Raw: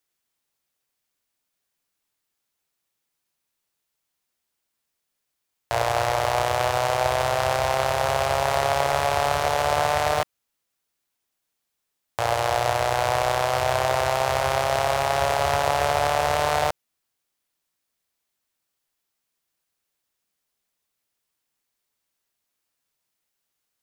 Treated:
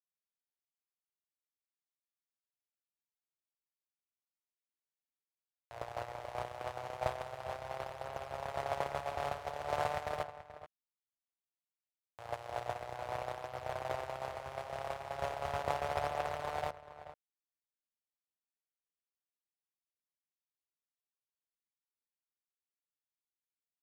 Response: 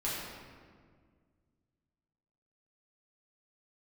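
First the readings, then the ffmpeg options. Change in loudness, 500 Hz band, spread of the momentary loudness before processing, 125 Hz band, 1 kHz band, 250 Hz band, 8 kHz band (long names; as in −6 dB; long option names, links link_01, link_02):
−17.0 dB, −16.5 dB, 3 LU, −17.5 dB, −17.0 dB, −15.5 dB, −24.5 dB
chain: -filter_complex "[0:a]agate=range=-25dB:threshold=-18dB:ratio=16:detection=peak,acrossover=split=4000[link_01][link_02];[link_01]acontrast=81[link_03];[link_02]aphaser=in_gain=1:out_gain=1:delay=3.2:decay=0.58:speed=0.37:type=triangular[link_04];[link_03][link_04]amix=inputs=2:normalize=0,asplit=2[link_05][link_06];[link_06]adelay=431.5,volume=-13dB,highshelf=frequency=4000:gain=-9.71[link_07];[link_05][link_07]amix=inputs=2:normalize=0,volume=-7.5dB"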